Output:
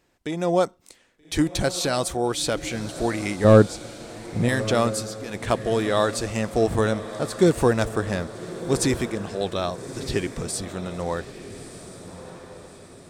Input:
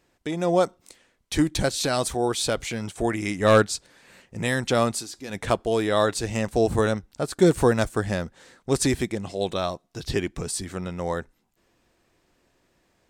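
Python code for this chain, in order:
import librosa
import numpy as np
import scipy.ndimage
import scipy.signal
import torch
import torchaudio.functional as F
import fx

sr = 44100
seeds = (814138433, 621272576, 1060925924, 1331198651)

y = fx.tilt_shelf(x, sr, db=8.5, hz=810.0, at=(3.44, 4.49))
y = fx.echo_diffused(y, sr, ms=1257, feedback_pct=49, wet_db=-12.5)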